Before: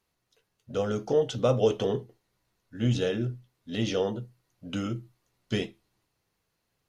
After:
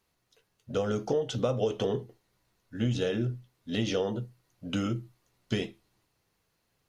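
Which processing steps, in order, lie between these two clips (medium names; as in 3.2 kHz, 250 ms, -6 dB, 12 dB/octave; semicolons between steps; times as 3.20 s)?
compression 6:1, threshold -27 dBFS, peak gain reduction 9.5 dB; trim +2.5 dB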